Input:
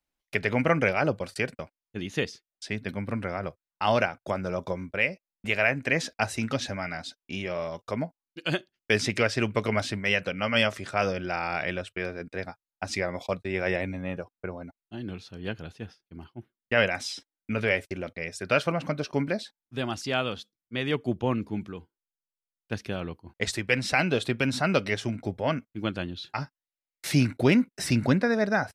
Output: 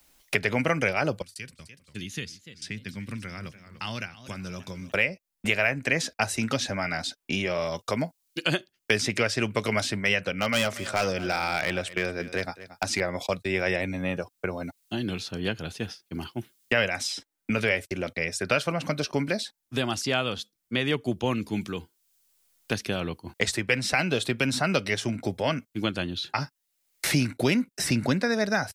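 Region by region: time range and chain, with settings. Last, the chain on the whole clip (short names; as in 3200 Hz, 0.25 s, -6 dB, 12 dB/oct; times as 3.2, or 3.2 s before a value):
1.22–4.92 passive tone stack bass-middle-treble 6-0-2 + warbling echo 0.292 s, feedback 39%, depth 139 cents, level -17.5 dB
10.33–13.01 bell 130 Hz -5.5 dB 0.22 oct + hard clip -20.5 dBFS + echo 0.229 s -19 dB
whole clip: high shelf 4400 Hz +9.5 dB; three-band squash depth 70%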